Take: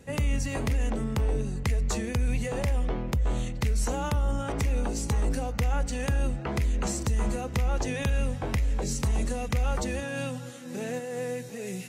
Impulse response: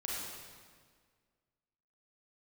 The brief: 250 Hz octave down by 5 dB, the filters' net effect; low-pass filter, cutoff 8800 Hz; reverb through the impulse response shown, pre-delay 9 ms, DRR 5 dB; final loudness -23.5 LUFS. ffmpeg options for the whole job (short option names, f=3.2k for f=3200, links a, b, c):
-filter_complex "[0:a]lowpass=8.8k,equalizer=f=250:t=o:g=-6.5,asplit=2[a][b];[1:a]atrim=start_sample=2205,adelay=9[c];[b][c]afir=irnorm=-1:irlink=0,volume=-7.5dB[d];[a][d]amix=inputs=2:normalize=0,volume=6dB"